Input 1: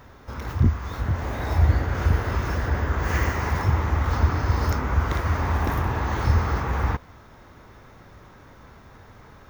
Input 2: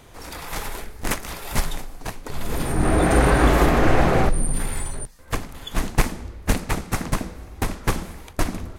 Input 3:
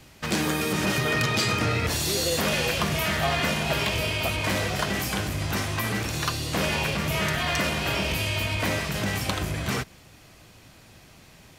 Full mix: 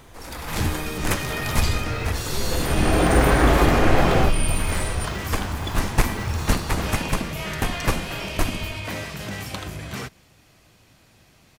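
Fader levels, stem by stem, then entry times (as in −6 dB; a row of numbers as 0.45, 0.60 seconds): −7.0, −0.5, −4.5 decibels; 0.00, 0.00, 0.25 seconds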